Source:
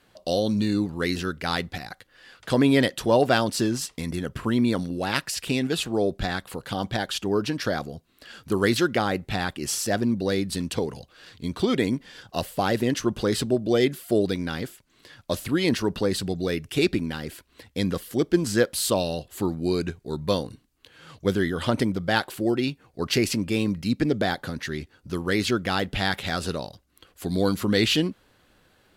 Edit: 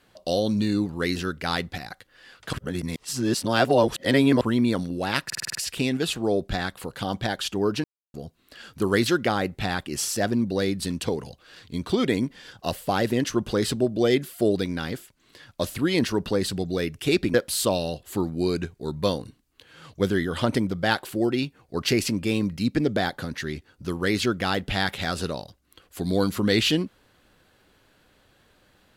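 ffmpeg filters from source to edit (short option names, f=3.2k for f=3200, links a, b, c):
-filter_complex "[0:a]asplit=12[a][b][c][d][e][f][g][h][i][j][k][l];[a]atrim=end=2.532[m];[b]atrim=start=2.528:end=4.412,asetpts=PTS-STARTPTS,areverse[n];[c]atrim=start=4.408:end=5.302[o];[d]atrim=start=5.248:end=5.302[p];[e]atrim=start=5.248:end=5.302[q];[f]atrim=start=5.248:end=5.302[r];[g]atrim=start=5.248:end=5.302[s];[h]atrim=start=5.248:end=5.302[t];[i]atrim=start=5.248:end=7.54,asetpts=PTS-STARTPTS,afade=t=out:st=2.288:d=0.004:c=hsin[u];[j]atrim=start=7.54:end=7.84,asetpts=PTS-STARTPTS,volume=0[v];[k]atrim=start=7.84:end=17.042,asetpts=PTS-STARTPTS,afade=t=in:d=0.004:c=hsin[w];[l]atrim=start=18.588[x];[m][n]acrossfade=d=0.004:c1=hsin:c2=hsin[y];[y][o]acrossfade=d=0.004:c1=hsin:c2=hsin[z];[z][p]acrossfade=d=0.004:c1=hsin:c2=hsin[aa];[aa][q]acrossfade=d=0.004:c1=hsin:c2=hsin[ab];[ab][r]acrossfade=d=0.004:c1=hsin:c2=hsin[ac];[ac][s]acrossfade=d=0.004:c1=hsin:c2=hsin[ad];[ad][t]acrossfade=d=0.004:c1=hsin:c2=hsin[ae];[u][v][w]concat=n=3:v=0:a=1[af];[ae][af]acrossfade=d=0.004:c1=hsin:c2=hsin[ag];[ag][x]acrossfade=d=0.004:c1=hsin:c2=hsin"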